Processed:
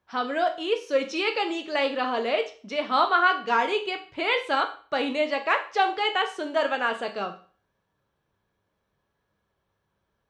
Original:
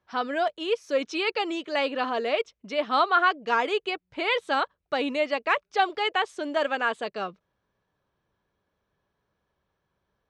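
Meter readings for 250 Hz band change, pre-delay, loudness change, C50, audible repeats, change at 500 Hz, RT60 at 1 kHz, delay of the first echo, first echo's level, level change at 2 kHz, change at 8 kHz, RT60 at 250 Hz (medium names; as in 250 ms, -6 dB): +0.5 dB, 10 ms, +1.0 dB, 12.0 dB, no echo, +1.0 dB, 0.40 s, no echo, no echo, +1.0 dB, no reading, 0.40 s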